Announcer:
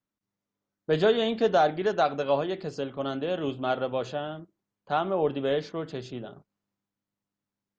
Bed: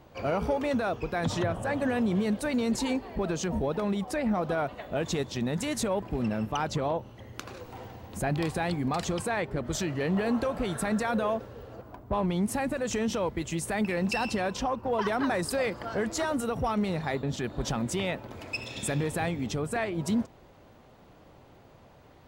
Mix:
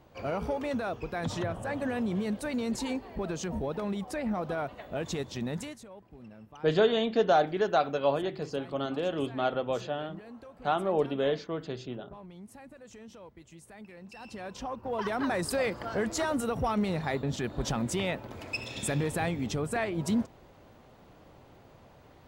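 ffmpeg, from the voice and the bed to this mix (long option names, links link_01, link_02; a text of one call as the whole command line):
ffmpeg -i stem1.wav -i stem2.wav -filter_complex "[0:a]adelay=5750,volume=-1.5dB[link_01];[1:a]volume=15.5dB,afade=type=out:start_time=5.55:duration=0.23:silence=0.158489,afade=type=in:start_time=14.14:duration=1.4:silence=0.105925[link_02];[link_01][link_02]amix=inputs=2:normalize=0" out.wav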